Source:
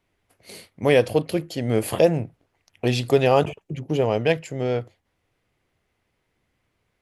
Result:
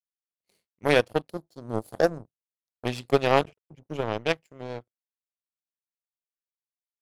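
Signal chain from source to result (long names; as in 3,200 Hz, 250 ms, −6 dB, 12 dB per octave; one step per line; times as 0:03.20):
0:01.30–0:02.85: elliptic band-stop filter 810–3,900 Hz
power curve on the samples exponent 2
level +1.5 dB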